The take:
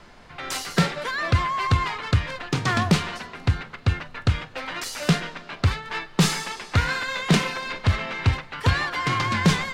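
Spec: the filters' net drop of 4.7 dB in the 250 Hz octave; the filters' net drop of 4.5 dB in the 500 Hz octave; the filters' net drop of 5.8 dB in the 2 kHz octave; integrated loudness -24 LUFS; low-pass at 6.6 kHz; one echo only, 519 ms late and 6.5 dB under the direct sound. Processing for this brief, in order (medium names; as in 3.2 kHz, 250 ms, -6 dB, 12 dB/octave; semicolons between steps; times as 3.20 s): low-pass 6.6 kHz; peaking EQ 250 Hz -8 dB; peaking EQ 500 Hz -3 dB; peaking EQ 2 kHz -7 dB; delay 519 ms -6.5 dB; trim +2.5 dB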